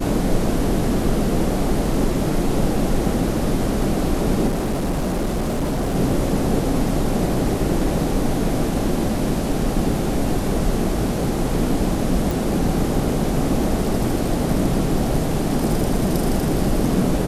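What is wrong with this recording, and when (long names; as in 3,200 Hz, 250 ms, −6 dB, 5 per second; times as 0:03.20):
0:04.47–0:05.96: clipping −18 dBFS
0:12.31: click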